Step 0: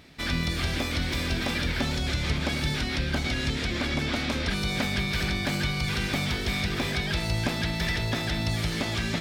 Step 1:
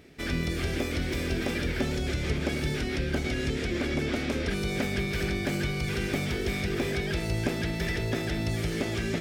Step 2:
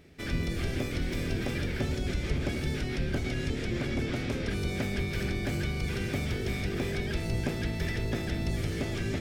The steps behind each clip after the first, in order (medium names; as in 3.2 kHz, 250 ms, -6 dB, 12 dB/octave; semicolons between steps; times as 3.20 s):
fifteen-band graphic EQ 400 Hz +9 dB, 1 kHz -6 dB, 4 kHz -7 dB; trim -2 dB
octave divider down 1 oct, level +1 dB; trim -4 dB